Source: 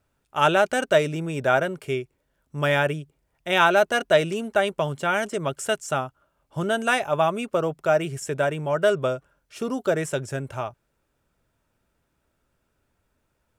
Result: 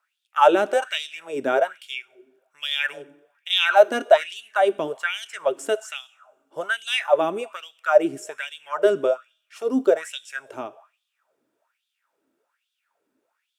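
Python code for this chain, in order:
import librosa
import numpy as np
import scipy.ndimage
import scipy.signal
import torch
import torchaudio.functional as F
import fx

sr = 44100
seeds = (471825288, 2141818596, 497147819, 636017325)

y = fx.rev_double_slope(x, sr, seeds[0], early_s=0.75, late_s=3.0, knee_db=-27, drr_db=16.0)
y = fx.filter_lfo_highpass(y, sr, shape='sine', hz=1.2, low_hz=270.0, high_hz=3500.0, q=5.7)
y = y * 10.0 ** (-4.5 / 20.0)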